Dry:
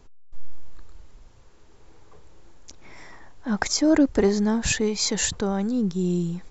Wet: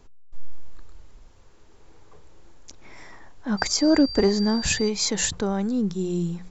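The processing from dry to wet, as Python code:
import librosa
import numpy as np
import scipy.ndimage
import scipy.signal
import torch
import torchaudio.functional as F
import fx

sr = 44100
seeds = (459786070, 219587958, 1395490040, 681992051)

y = fx.dmg_tone(x, sr, hz=4700.0, level_db=-32.0, at=(3.57, 4.88), fade=0.02)
y = fx.hum_notches(y, sr, base_hz=60, count=3)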